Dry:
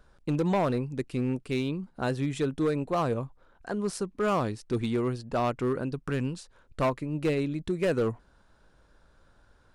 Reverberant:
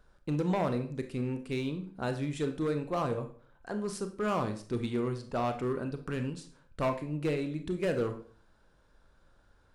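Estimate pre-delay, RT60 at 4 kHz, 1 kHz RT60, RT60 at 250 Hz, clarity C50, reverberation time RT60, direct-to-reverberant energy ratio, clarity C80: 27 ms, 0.40 s, 0.45 s, 0.55 s, 10.5 dB, 0.45 s, 7.0 dB, 16.0 dB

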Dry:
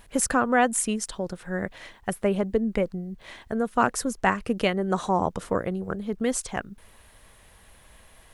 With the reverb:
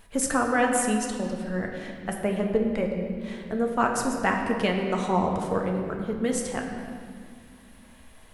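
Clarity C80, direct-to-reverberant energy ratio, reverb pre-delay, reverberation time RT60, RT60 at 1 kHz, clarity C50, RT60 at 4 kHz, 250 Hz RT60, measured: 5.0 dB, 0.5 dB, 4 ms, 2.1 s, 1.8 s, 3.5 dB, 1.5 s, 3.6 s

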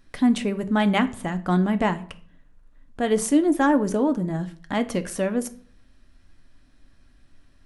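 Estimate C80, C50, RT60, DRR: 21.5 dB, 17.5 dB, 0.50 s, 9.0 dB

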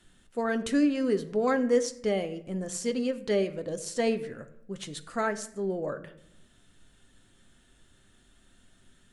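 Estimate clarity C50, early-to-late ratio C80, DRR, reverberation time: 14.5 dB, 17.0 dB, 8.5 dB, 0.75 s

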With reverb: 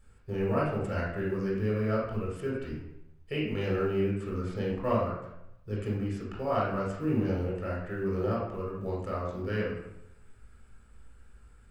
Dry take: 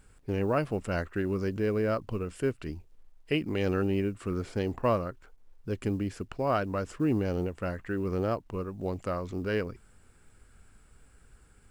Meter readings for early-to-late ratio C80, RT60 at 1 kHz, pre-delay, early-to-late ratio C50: 5.0 dB, 0.80 s, 17 ms, 1.0 dB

